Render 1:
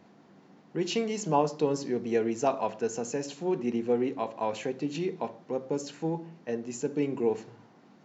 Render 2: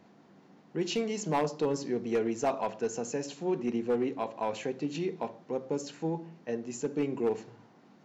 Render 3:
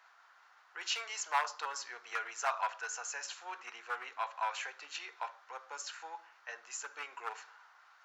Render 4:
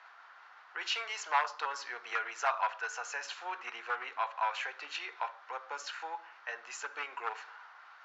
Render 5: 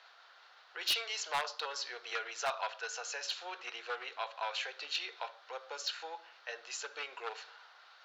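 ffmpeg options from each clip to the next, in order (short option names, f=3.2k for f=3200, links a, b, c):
-af "asoftclip=type=hard:threshold=-20.5dB,volume=-1.5dB"
-af "highpass=f=940:w=0.5412,highpass=f=940:w=1.3066,equalizer=f=1.4k:w=2.3:g=10,volume=1dB"
-filter_complex "[0:a]lowpass=3.9k,asplit=2[a][b];[b]acompressor=threshold=-47dB:ratio=6,volume=0dB[c];[a][c]amix=inputs=2:normalize=0,volume=1.5dB"
-af "equalizer=f=250:t=o:w=1:g=-7,equalizer=f=500:t=o:w=1:g=6,equalizer=f=1k:t=o:w=1:g=-8,equalizer=f=2k:t=o:w=1:g=-5,equalizer=f=4k:t=o:w=1:g=10,aeval=exprs='0.0668*(abs(mod(val(0)/0.0668+3,4)-2)-1)':c=same"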